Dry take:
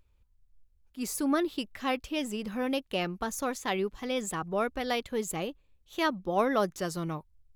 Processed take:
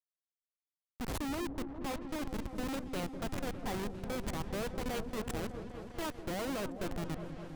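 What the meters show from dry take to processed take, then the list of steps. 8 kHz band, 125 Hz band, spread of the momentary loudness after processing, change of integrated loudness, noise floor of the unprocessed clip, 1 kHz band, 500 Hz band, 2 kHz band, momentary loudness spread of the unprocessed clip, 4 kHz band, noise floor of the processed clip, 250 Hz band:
-8.5 dB, -0.5 dB, 4 LU, -7.5 dB, -66 dBFS, -9.5 dB, -8.5 dB, -8.5 dB, 8 LU, -8.0 dB, under -85 dBFS, -6.0 dB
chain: Schmitt trigger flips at -29.5 dBFS; repeats that get brighter 0.202 s, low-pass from 400 Hz, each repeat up 1 oct, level -6 dB; gain -4 dB

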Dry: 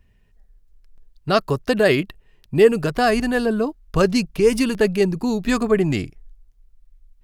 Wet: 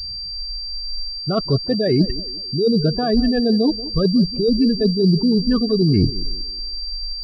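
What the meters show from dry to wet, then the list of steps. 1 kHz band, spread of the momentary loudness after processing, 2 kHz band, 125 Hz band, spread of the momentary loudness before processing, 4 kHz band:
-6.5 dB, 10 LU, -13.0 dB, +6.5 dB, 8 LU, +9.5 dB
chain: spectral gate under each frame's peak -15 dB strong; reverse; compressor 12:1, threshold -29 dBFS, peak gain reduction 20.5 dB; reverse; low shelf 480 Hz +12 dB; narrowing echo 0.181 s, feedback 43%, band-pass 400 Hz, level -15 dB; pulse-width modulation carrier 4700 Hz; gain +6.5 dB

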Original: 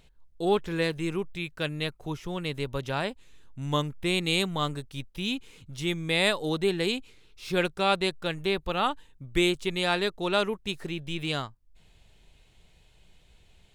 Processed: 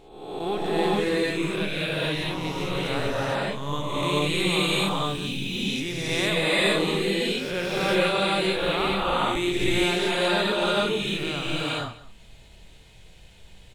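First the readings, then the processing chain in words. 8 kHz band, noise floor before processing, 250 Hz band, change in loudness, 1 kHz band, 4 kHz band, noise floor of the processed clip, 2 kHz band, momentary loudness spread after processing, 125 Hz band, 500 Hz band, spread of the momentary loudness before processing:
+6.0 dB, -59 dBFS, +4.0 dB, +4.0 dB, +4.5 dB, +5.0 dB, -49 dBFS, +5.0 dB, 7 LU, +3.0 dB, +4.0 dB, 10 LU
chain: spectral swells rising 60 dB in 0.86 s; in parallel at +2.5 dB: compressor, threshold -36 dBFS, peak gain reduction 17 dB; on the sum: echo 0.19 s -18.5 dB; non-linear reverb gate 0.49 s rising, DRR -7 dB; gain -8 dB

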